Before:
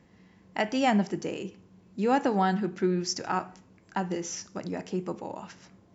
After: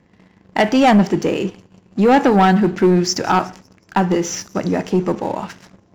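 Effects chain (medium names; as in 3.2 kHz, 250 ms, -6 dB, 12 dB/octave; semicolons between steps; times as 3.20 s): treble shelf 5.4 kHz -9 dB; feedback echo behind a high-pass 184 ms, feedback 58%, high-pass 4.1 kHz, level -19.5 dB; waveshaping leveller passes 2; trim +8 dB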